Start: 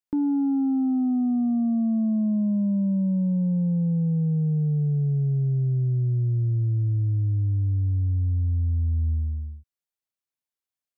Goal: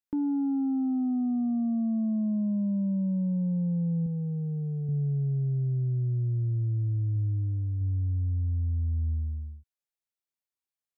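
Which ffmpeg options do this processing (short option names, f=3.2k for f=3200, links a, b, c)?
-filter_complex "[0:a]asettb=1/sr,asplit=3[a][b][c];[a]atrim=end=4.064[d];[b]atrim=start=4.06:end=4.89,asetpts=PTS-STARTPTS,afade=t=in:d=0.004:c=qsin,afade=t=out:st=0.826:d=0.004:c=qsin,equalizer=f=61:t=o:w=1.7:g=-13[e];[c]atrim=start=4.886[f];[d][e]acrossfade=d=0.004:c1=hsin:c2=qsin[g];[g][f]acrossfade=d=0.004:c1=qsin:c2=hsin,asettb=1/sr,asplit=3[h][i][j];[h]atrim=end=7.124[k];[i]atrim=start=7.12:end=7.81,asetpts=PTS-STARTPTS,afade=t=in:d=0.004:c=qsin,afade=t=out:st=0.686:d=0.004:c=qsin,asplit=2[l][m];[m]adelay=36,volume=-13dB[n];[l][n]amix=inputs=2:normalize=0,atrim=end_sample=30429[o];[j]atrim=start=7.806[p];[k][o]acrossfade=d=0.004:c1=hsin:c2=qsin[q];[q][p]acrossfade=d=0.004:c1=qsin:c2=hsin,volume=-4.5dB"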